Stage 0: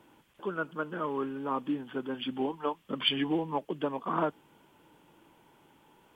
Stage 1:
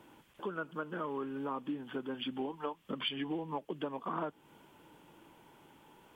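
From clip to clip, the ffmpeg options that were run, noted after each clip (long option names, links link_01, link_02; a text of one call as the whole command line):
ffmpeg -i in.wav -af "acompressor=threshold=-38dB:ratio=3,volume=1.5dB" out.wav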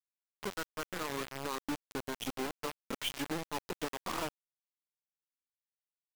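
ffmpeg -i in.wav -af "aeval=exprs='if(lt(val(0),0),0.708*val(0),val(0))':channel_layout=same,acrusher=bits=5:mix=0:aa=0.000001" out.wav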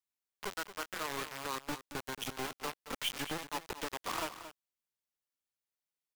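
ffmpeg -i in.wav -filter_complex "[0:a]acrossover=split=620[link_01][link_02];[link_01]aeval=exprs='clip(val(0),-1,0.00299)':channel_layout=same[link_03];[link_03][link_02]amix=inputs=2:normalize=0,aecho=1:1:226:0.251,volume=1dB" out.wav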